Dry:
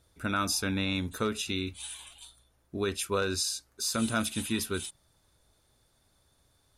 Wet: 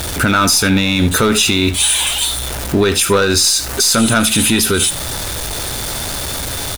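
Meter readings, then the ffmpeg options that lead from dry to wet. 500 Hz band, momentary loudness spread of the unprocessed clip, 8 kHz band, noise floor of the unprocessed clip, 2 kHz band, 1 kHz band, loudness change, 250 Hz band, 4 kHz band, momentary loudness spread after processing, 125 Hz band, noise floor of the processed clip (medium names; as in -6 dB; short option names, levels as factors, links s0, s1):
+17.0 dB, 13 LU, +21.5 dB, -69 dBFS, +18.5 dB, +17.0 dB, +17.5 dB, +17.0 dB, +20.5 dB, 9 LU, +18.5 dB, -23 dBFS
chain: -filter_complex "[0:a]aeval=exprs='val(0)+0.5*0.00631*sgn(val(0))':c=same,asplit=2[s0][s1];[s1]acompressor=threshold=0.01:ratio=6,volume=1.26[s2];[s0][s2]amix=inputs=2:normalize=0,aeval=exprs='(tanh(8.91*val(0)+0.25)-tanh(0.25))/8.91':c=same,lowshelf=f=460:g=-3,bandreject=f=1100:w=19,asplit=2[s3][s4];[s4]aecho=0:1:78:0.133[s5];[s3][s5]amix=inputs=2:normalize=0,alimiter=level_in=16.8:limit=0.891:release=50:level=0:latency=1,volume=0.708"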